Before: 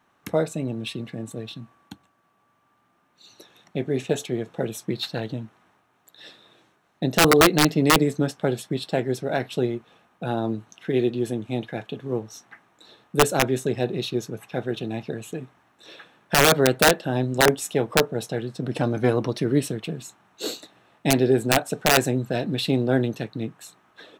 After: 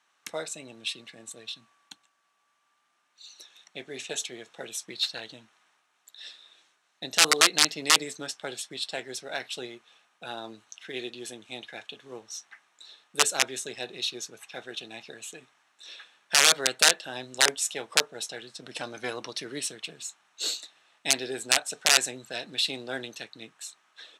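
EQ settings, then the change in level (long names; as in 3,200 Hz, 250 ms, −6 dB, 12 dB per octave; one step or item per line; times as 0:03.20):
meter weighting curve ITU-R 468
−7.5 dB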